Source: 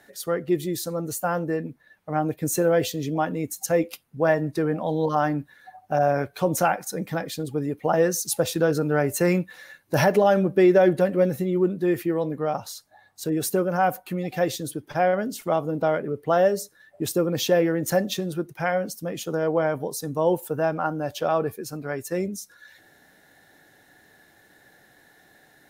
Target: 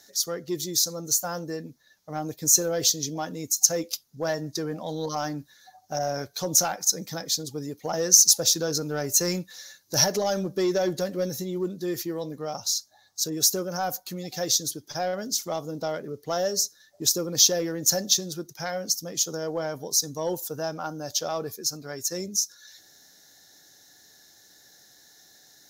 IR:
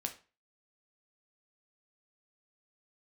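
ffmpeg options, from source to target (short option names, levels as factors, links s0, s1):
-af "acontrast=86,aexciter=amount=10.1:drive=1.4:freq=3800,highshelf=f=7400:t=q:w=3:g=-7,volume=0.2"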